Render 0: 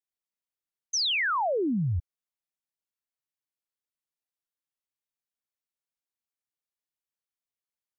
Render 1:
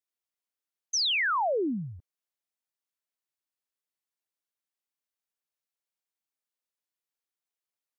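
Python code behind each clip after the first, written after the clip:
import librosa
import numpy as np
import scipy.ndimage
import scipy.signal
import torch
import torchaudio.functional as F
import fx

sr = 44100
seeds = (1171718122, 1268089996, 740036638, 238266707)

y = scipy.signal.sosfilt(scipy.signal.butter(2, 250.0, 'highpass', fs=sr, output='sos'), x)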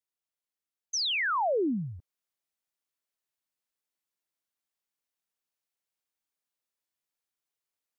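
y = fx.rider(x, sr, range_db=10, speed_s=0.5)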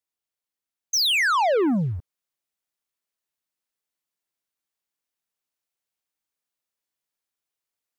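y = fx.leveller(x, sr, passes=2)
y = y * 10.0 ** (5.5 / 20.0)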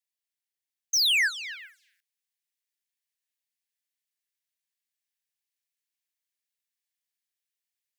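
y = scipy.signal.sosfilt(scipy.signal.butter(16, 1600.0, 'highpass', fs=sr, output='sos'), x)
y = y * 10.0 ** (-1.5 / 20.0)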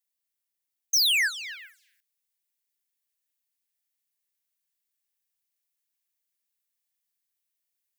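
y = fx.high_shelf(x, sr, hz=8800.0, db=9.5)
y = y * 10.0 ** (-1.0 / 20.0)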